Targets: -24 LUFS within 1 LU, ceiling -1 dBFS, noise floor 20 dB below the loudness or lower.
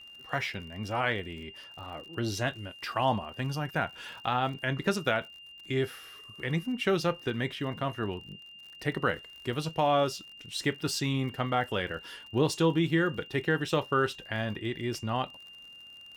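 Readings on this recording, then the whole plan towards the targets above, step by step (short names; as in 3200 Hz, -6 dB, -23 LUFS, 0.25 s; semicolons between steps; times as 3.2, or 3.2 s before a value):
ticks 50/s; steady tone 2800 Hz; tone level -47 dBFS; loudness -31.0 LUFS; peak -14.0 dBFS; loudness target -24.0 LUFS
-> de-click; notch 2800 Hz, Q 30; gain +7 dB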